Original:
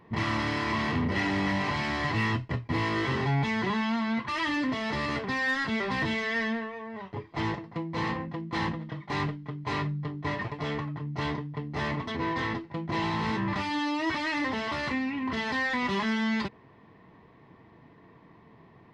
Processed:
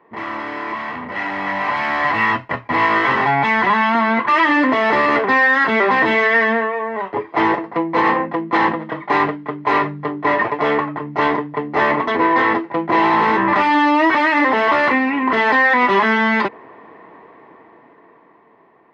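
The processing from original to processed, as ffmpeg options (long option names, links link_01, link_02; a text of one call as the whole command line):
ffmpeg -i in.wav -filter_complex "[0:a]asettb=1/sr,asplit=3[link_01][link_02][link_03];[link_01]atrim=end=0.744[link_04];[link_02]atrim=start=0.74:end=3.95,asetpts=PTS-STARTPTS,afade=type=in:duration=0.004:curve=qsin,afade=type=out:start_time=3.206:duration=0.004:curve=qsin,equalizer=frequency=380:width_type=o:width=0.83:gain=-10[link_05];[link_03]atrim=start=3.946[link_06];[link_04][link_05]acrossfade=duration=0.004:curve1=hsin:curve2=qsin[link_07];[link_07][link_06]acrossfade=duration=0.004:curve1=qsin:curve2=hsin,acrossover=split=300 2300:gain=0.0631 1 0.126[link_08][link_09][link_10];[link_08][link_09][link_10]amix=inputs=3:normalize=0,dynaudnorm=framelen=340:gausssize=11:maxgain=13dB,alimiter=level_in=11dB:limit=-1dB:release=50:level=0:latency=1,volume=-5dB" out.wav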